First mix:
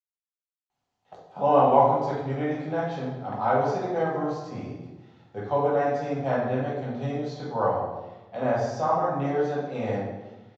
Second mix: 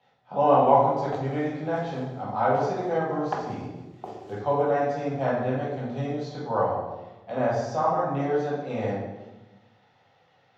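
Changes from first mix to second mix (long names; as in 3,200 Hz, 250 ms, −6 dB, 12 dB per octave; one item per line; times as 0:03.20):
speech: entry −1.05 s
background +11.5 dB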